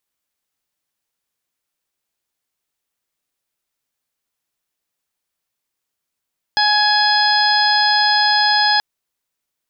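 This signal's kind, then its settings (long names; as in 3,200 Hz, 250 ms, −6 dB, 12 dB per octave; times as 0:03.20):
steady harmonic partials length 2.23 s, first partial 838 Hz, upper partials −1.5/−17/−7/−5/−1 dB, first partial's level −16.5 dB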